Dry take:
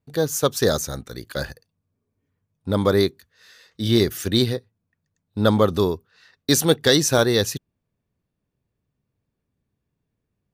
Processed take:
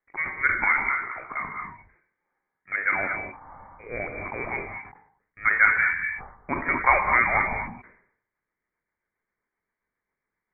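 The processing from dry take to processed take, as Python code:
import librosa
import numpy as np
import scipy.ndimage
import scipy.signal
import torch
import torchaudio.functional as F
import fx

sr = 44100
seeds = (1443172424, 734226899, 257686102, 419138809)

y = scipy.signal.sosfilt(scipy.signal.butter(4, 680.0, 'highpass', fs=sr, output='sos'), x)
y = fx.freq_invert(y, sr, carrier_hz=2700)
y = fx.rotary_switch(y, sr, hz=0.8, then_hz=7.5, switch_at_s=6.83)
y = fx.rev_gated(y, sr, seeds[0], gate_ms=260, shape='rising', drr_db=3.0)
y = fx.sustainer(y, sr, db_per_s=89.0)
y = y * 10.0 ** (8.0 / 20.0)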